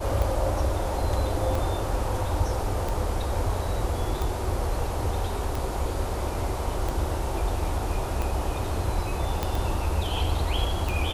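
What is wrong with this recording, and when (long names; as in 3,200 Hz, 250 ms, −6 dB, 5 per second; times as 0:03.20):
scratch tick 45 rpm
0:09.43: click −12 dBFS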